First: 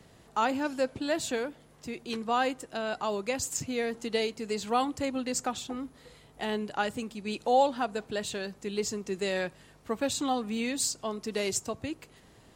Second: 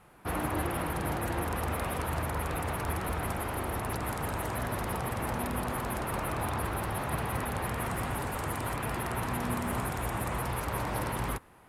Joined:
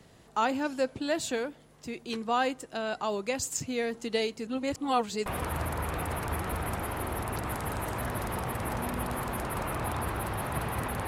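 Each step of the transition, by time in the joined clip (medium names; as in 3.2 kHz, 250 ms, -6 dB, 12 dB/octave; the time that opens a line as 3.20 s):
first
4.47–5.26 s: reverse
5.26 s: go over to second from 1.83 s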